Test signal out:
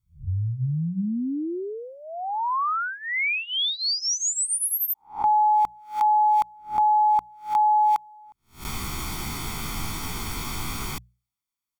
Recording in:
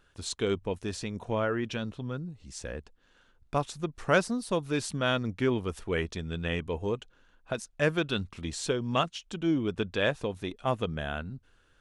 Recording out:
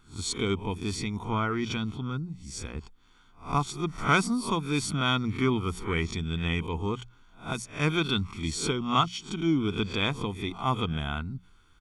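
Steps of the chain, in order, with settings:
peak hold with a rise ahead of every peak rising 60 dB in 0.32 s
mains-hum notches 60/120/180 Hz
comb filter 0.9 ms, depth 83%

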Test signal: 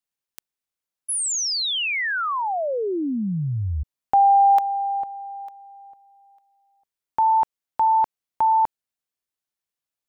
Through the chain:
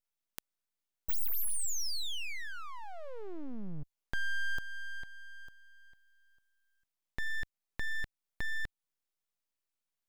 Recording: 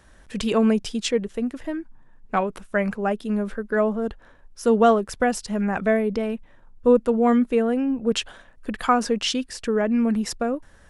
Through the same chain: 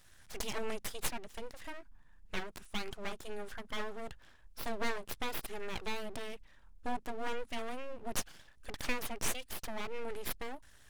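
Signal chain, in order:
guitar amp tone stack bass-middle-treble 5-5-5
full-wave rectification
in parallel at +0.5 dB: downward compressor, threshold −45 dBFS

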